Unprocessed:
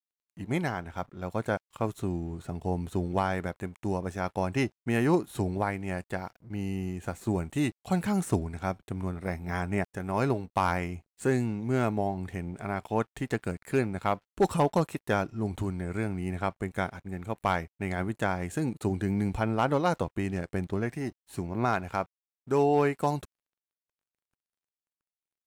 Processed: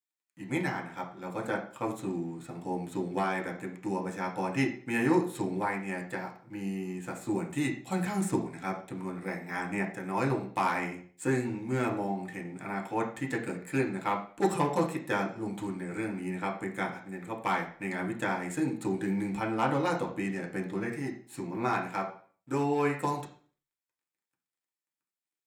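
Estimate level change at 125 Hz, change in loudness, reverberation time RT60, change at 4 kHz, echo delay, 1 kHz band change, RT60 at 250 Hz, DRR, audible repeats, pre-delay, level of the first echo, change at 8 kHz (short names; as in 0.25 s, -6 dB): -5.5 dB, -2.0 dB, 0.50 s, -1.5 dB, none, -1.0 dB, 0.45 s, -1.0 dB, none, 3 ms, none, +0.5 dB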